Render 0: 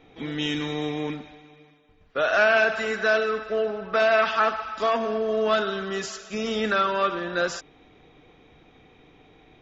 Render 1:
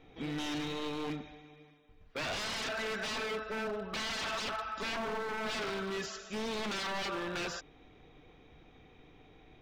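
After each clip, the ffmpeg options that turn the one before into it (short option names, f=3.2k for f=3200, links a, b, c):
-filter_complex "[0:a]lowshelf=f=79:g=8,aeval=exprs='0.0531*(abs(mod(val(0)/0.0531+3,4)-2)-1)':c=same,acrossover=split=6000[a][b];[b]acompressor=threshold=-49dB:ratio=4:attack=1:release=60[c];[a][c]amix=inputs=2:normalize=0,volume=-5.5dB"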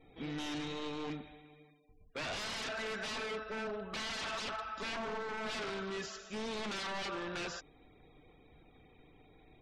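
-af "afftfilt=real='re*gte(hypot(re,im),0.000794)':imag='im*gte(hypot(re,im),0.000794)':win_size=1024:overlap=0.75,volume=-3dB"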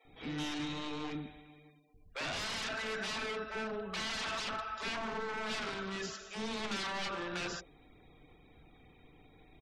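-filter_complex "[0:a]acrossover=split=500[a][b];[a]adelay=50[c];[c][b]amix=inputs=2:normalize=0,volume=2dB"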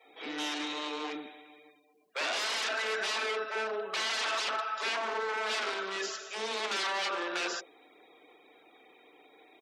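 -af "highpass=f=350:w=0.5412,highpass=f=350:w=1.3066,volume=6dB"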